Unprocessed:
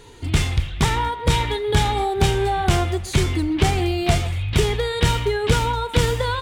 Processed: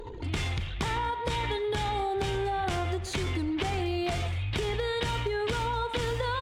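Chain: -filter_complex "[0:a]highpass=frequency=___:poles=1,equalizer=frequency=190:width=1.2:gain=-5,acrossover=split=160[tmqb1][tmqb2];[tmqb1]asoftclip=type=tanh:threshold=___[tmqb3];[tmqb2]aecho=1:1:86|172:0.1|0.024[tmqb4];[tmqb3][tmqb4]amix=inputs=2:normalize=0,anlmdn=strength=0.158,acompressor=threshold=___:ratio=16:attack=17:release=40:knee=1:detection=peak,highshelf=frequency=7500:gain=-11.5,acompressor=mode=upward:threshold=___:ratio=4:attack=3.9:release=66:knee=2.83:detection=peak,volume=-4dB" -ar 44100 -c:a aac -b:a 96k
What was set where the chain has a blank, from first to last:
46, -20.5dB, -25dB, -28dB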